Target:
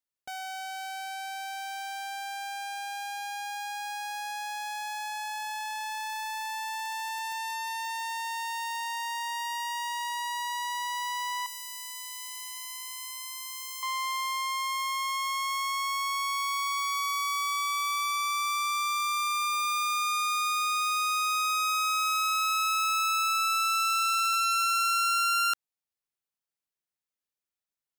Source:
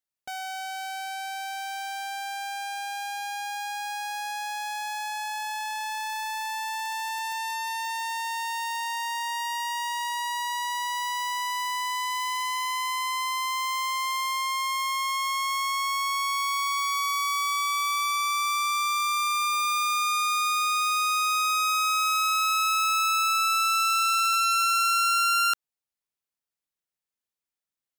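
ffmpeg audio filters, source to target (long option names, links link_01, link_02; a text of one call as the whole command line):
ffmpeg -i in.wav -filter_complex "[0:a]asettb=1/sr,asplit=3[link_01][link_02][link_03];[link_01]atrim=end=11.464[link_04];[link_02]atrim=start=11.46:end=13.83,asetpts=PTS-STARTPTS,afade=type=in:duration=0.004:curve=qsin,afade=type=out:start_time=2.366:duration=0.004:curve=qsin,aderivative[link_05];[link_03]atrim=start=13.826[link_06];[link_04][link_05]acrossfade=duration=0.004:curve1=hsin:curve2=qsin[link_07];[link_07][link_06]acrossfade=duration=0.004:curve1=qsin:curve2=hsin,volume=-3dB" out.wav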